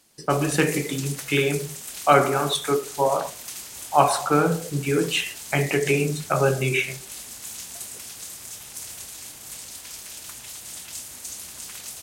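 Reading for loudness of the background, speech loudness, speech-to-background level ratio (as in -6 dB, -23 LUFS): -35.0 LUFS, -23.0 LUFS, 12.0 dB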